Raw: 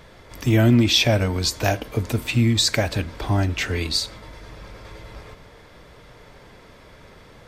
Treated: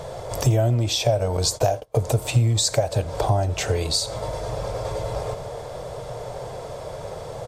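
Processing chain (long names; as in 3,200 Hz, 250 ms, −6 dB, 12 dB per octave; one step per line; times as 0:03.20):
parametric band 700 Hz +11 dB 1.1 octaves
downward compressor 8 to 1, threshold −28 dBFS, peak gain reduction 19 dB
octave-band graphic EQ 125/250/500/2,000/8,000 Hz +11/−10/+8/−7/+10 dB
on a send: single-tap delay 85 ms −23 dB
0:01.37–0:02.07: on the sum: noise gate −32 dBFS, range −28 dB
level +5.5 dB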